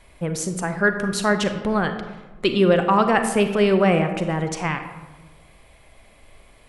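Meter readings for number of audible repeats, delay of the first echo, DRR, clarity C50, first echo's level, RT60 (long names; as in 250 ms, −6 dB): no echo audible, no echo audible, 7.0 dB, 8.5 dB, no echo audible, 1.2 s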